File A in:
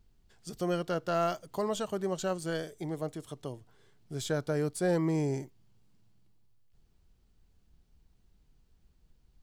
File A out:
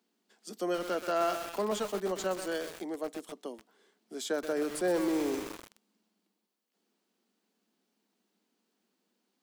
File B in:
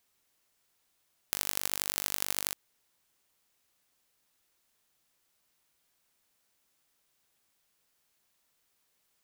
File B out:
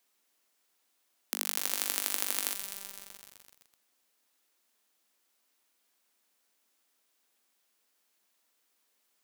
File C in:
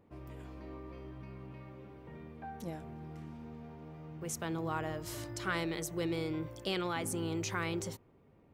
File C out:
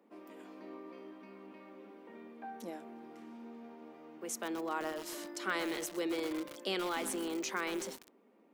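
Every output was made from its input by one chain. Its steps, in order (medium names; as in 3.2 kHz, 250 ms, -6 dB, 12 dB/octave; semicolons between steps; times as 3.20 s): steep high-pass 200 Hz 72 dB/octave; bit-crushed delay 127 ms, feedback 80%, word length 6-bit, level -7.5 dB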